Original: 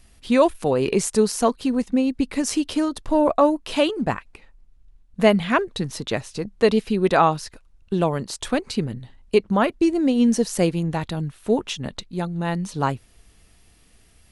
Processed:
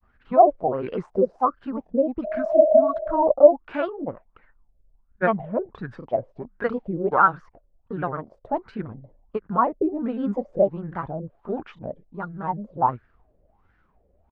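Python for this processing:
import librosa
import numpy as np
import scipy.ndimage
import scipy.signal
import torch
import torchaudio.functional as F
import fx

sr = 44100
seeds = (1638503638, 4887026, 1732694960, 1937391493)

y = fx.granulator(x, sr, seeds[0], grain_ms=100.0, per_s=20.0, spray_ms=24.0, spread_st=3)
y = fx.spec_repair(y, sr, seeds[1], start_s=2.27, length_s=0.92, low_hz=350.0, high_hz=850.0, source='after')
y = fx.filter_lfo_lowpass(y, sr, shape='sine', hz=1.4, low_hz=540.0, high_hz=1600.0, q=7.4)
y = F.gain(torch.from_numpy(y), -7.5).numpy()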